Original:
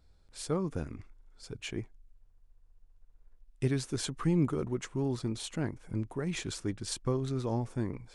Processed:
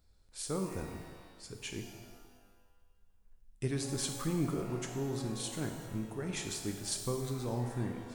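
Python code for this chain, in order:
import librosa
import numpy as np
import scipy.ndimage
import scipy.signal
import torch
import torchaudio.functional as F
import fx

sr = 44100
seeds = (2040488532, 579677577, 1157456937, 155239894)

y = fx.high_shelf(x, sr, hz=6300.0, db=10.0)
y = fx.rev_shimmer(y, sr, seeds[0], rt60_s=1.4, semitones=12, shimmer_db=-8, drr_db=3.5)
y = F.gain(torch.from_numpy(y), -5.0).numpy()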